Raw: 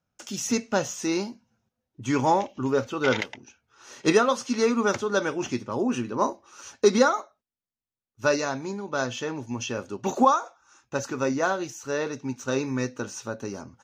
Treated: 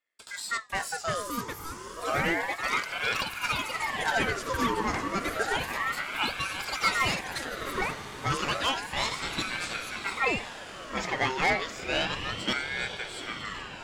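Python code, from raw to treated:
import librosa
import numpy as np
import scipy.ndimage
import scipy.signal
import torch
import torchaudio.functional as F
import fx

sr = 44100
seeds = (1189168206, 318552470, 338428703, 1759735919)

p1 = fx.spec_clip(x, sr, under_db=24, at=(9.02, 9.73), fade=0.02)
p2 = fx.band_shelf(p1, sr, hz=2000.0, db=15.5, octaves=2.4, at=(10.97, 12.53))
p3 = 10.0 ** (-14.0 / 20.0) * np.tanh(p2 / 10.0 ** (-14.0 / 20.0))
p4 = fx.echo_pitch(p3, sr, ms=560, semitones=6, count=2, db_per_echo=-3.0)
p5 = p4 + fx.echo_diffused(p4, sr, ms=827, feedback_pct=62, wet_db=-10, dry=0)
p6 = fx.ring_lfo(p5, sr, carrier_hz=1300.0, swing_pct=50, hz=0.31)
y = F.gain(torch.from_numpy(p6), -3.0).numpy()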